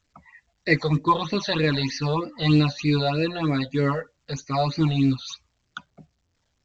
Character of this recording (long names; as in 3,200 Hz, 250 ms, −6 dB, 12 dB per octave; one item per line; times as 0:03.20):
phaser sweep stages 8, 3.2 Hz, lowest notch 300–1,100 Hz
A-law companding